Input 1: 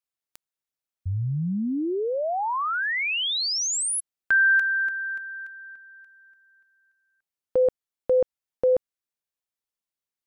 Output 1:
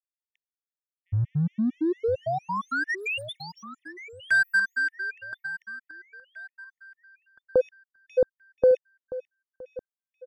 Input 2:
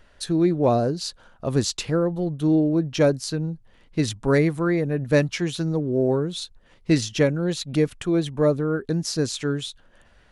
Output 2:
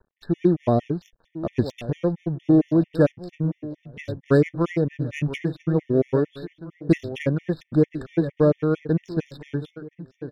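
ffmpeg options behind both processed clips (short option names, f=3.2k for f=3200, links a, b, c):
-filter_complex "[0:a]aemphasis=mode=reproduction:type=75fm,acrossover=split=580|1500[a][b][c];[b]acompressor=threshold=-36dB:ratio=6:attack=72:release=31:detection=rms[d];[a][d][c]amix=inputs=3:normalize=0,aeval=exprs='sgn(val(0))*max(abs(val(0))-0.00355,0)':c=same,adynamicsmooth=sensitivity=4:basefreq=1.5k,asplit=2[e][f];[f]adelay=1023,lowpass=f=3.7k:p=1,volume=-14dB,asplit=2[g][h];[h]adelay=1023,lowpass=f=3.7k:p=1,volume=0.4,asplit=2[i][j];[j]adelay=1023,lowpass=f=3.7k:p=1,volume=0.4,asplit=2[k][l];[l]adelay=1023,lowpass=f=3.7k:p=1,volume=0.4[m];[g][i][k][m]amix=inputs=4:normalize=0[n];[e][n]amix=inputs=2:normalize=0,afftfilt=real='re*gt(sin(2*PI*4.4*pts/sr)*(1-2*mod(floor(b*sr/1024/1800),2)),0)':imag='im*gt(sin(2*PI*4.4*pts/sr)*(1-2*mod(floor(b*sr/1024/1800),2)),0)':win_size=1024:overlap=0.75,volume=3dB"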